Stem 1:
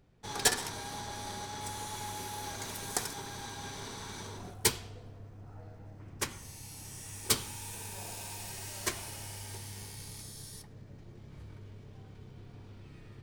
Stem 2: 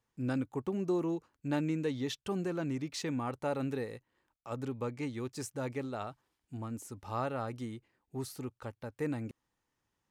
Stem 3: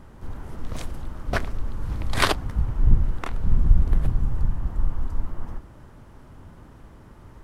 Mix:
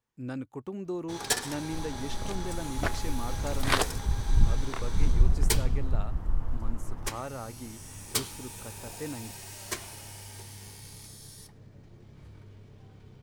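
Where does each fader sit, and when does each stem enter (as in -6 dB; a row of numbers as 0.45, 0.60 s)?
-1.0, -3.0, -5.0 dB; 0.85, 0.00, 1.50 s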